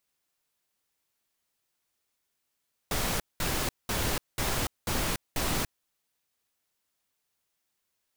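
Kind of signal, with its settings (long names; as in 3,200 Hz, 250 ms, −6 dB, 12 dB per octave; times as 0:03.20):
noise bursts pink, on 0.29 s, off 0.20 s, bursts 6, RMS −29 dBFS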